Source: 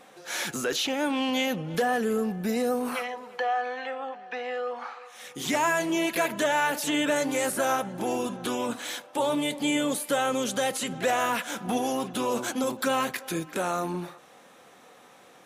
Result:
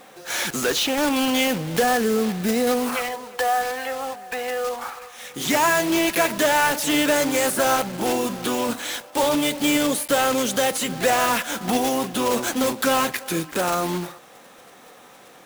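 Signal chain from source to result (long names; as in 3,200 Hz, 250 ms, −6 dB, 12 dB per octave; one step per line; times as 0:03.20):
one scale factor per block 3 bits
level +5.5 dB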